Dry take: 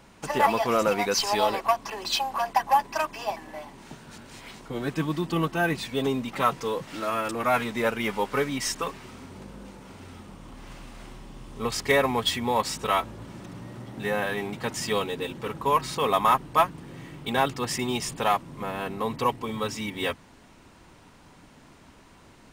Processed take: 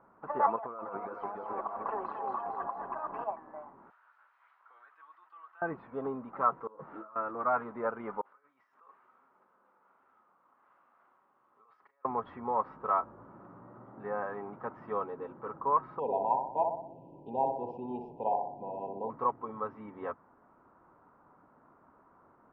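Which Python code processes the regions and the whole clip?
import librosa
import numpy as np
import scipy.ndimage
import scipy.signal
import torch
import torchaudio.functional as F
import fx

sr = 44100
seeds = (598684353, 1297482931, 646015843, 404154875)

y = fx.chain(x, sr, fx.notch(hz=1900.0, q=23.0),
    fx.over_compress(threshold_db=-33.0, ratio=-1.0),
    fx.echo_split(split_hz=670.0, low_ms=298, high_ms=226, feedback_pct=52, wet_db=-4.0), at=(0.56, 3.24))
y = fx.chain(y, sr, fx.highpass(hz=1200.0, slope=12),
    fx.differentiator(),
    fx.env_flatten(amount_pct=70), at=(3.9, 5.62))
y = fx.chain(y, sr, fx.over_compress(threshold_db=-35.0, ratio=-0.5),
    fx.ensemble(), at=(6.67, 7.16))
y = fx.chain(y, sr, fx.over_compress(threshold_db=-36.0, ratio=-1.0),
    fx.differentiator(),
    fx.doubler(ms=37.0, db=-12.0), at=(8.21, 12.05))
y = fx.chain(y, sr, fx.brickwall_bandstop(low_hz=1000.0, high_hz=2400.0),
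    fx.echo_banded(ms=61, feedback_pct=57, hz=540.0, wet_db=-3.0), at=(15.99, 19.1))
y = scipy.signal.sosfilt(scipy.signal.cheby1(4, 1.0, 1300.0, 'lowpass', fs=sr, output='sos'), y)
y = fx.tilt_eq(y, sr, slope=4.0)
y = y * 10.0 ** (-3.5 / 20.0)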